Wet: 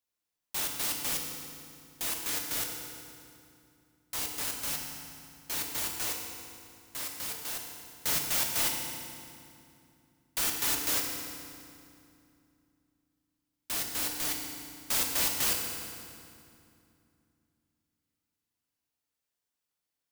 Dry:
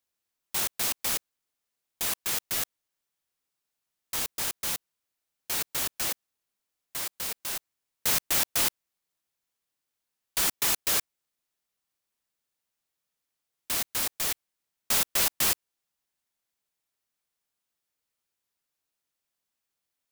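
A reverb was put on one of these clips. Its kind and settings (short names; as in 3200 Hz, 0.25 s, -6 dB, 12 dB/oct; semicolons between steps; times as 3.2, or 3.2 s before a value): FDN reverb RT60 2.5 s, low-frequency decay 1.5×, high-frequency decay 0.8×, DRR 1 dB; gain -5 dB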